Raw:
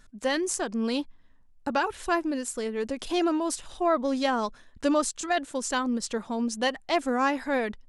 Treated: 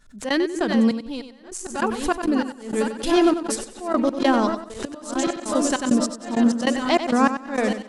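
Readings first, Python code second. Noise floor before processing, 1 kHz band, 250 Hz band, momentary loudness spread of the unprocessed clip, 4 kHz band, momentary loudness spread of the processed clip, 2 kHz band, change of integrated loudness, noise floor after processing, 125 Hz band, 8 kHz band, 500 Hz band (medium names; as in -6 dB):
-56 dBFS, +3.5 dB, +8.0 dB, 6 LU, +4.0 dB, 11 LU, +3.0 dB, +6.0 dB, -42 dBFS, no reading, +3.0 dB, +4.5 dB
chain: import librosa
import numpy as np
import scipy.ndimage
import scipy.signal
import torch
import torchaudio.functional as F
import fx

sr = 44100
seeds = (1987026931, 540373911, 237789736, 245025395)

y = fx.reverse_delay_fb(x, sr, ms=527, feedback_pct=75, wet_db=-9)
y = fx.dynamic_eq(y, sr, hz=180.0, q=0.89, threshold_db=-40.0, ratio=4.0, max_db=7)
y = fx.step_gate(y, sr, bpm=99, pattern='..x.xx.x', floor_db=-24.0, edge_ms=4.5)
y = fx.echo_feedback(y, sr, ms=94, feedback_pct=20, wet_db=-10)
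y = fx.pre_swell(y, sr, db_per_s=120.0)
y = y * librosa.db_to_amplitude(4.5)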